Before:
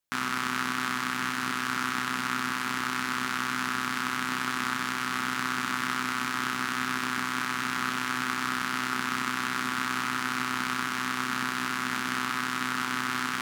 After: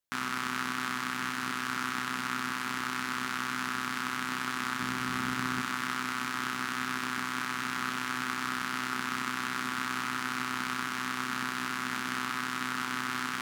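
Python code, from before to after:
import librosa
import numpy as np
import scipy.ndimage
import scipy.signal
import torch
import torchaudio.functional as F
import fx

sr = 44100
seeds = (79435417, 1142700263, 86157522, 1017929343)

y = fx.low_shelf(x, sr, hz=270.0, db=10.0, at=(4.8, 5.62))
y = y * librosa.db_to_amplitude(-3.5)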